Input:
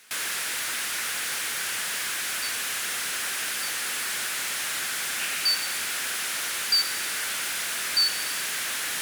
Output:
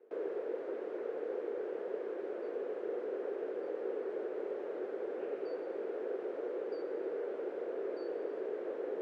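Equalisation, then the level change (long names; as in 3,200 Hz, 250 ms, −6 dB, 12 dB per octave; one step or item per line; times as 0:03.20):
flat-topped band-pass 430 Hz, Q 2.8
+15.5 dB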